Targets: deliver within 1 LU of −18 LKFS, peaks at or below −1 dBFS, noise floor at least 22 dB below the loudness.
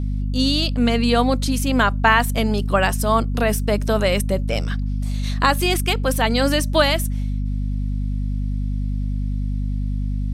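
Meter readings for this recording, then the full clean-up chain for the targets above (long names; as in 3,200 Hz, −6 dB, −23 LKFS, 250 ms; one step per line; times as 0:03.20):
mains hum 50 Hz; hum harmonics up to 250 Hz; level of the hum −20 dBFS; integrated loudness −20.5 LKFS; sample peak −1.5 dBFS; target loudness −18.0 LKFS
→ mains-hum notches 50/100/150/200/250 Hz
level +2.5 dB
brickwall limiter −1 dBFS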